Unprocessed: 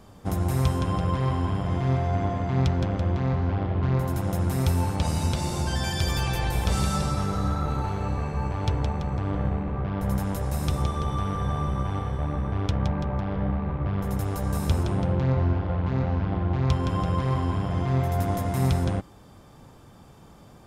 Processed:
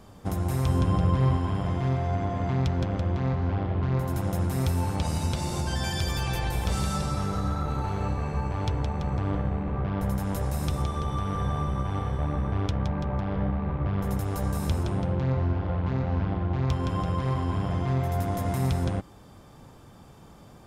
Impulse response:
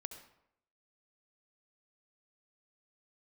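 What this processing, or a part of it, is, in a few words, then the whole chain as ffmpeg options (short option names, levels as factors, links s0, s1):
clipper into limiter: -filter_complex "[0:a]asoftclip=type=hard:threshold=0.168,alimiter=limit=0.119:level=0:latency=1:release=214,asettb=1/sr,asplit=3[s0][s1][s2];[s0]atrim=end=0.684[s3];[s1]atrim=start=0.68:end=1.37,asetpts=PTS-STARTPTS,afade=t=in:d=0.004:c=qsin,afade=t=out:st=0.686:d=0.004:c=qsin,lowshelf=f=360:g=6[s4];[s2]atrim=start=1.366[s5];[s3][s4]acrossfade=d=0.004:c1=hsin:c2=qsin[s6];[s6][s5]acrossfade=d=0.004:c1=qsin:c2=hsin"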